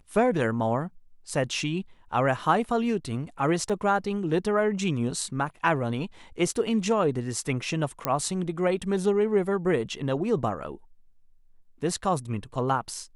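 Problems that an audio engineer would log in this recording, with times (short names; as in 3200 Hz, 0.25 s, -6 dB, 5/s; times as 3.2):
3.69–3.7 gap 6.4 ms
8.05 pop -9 dBFS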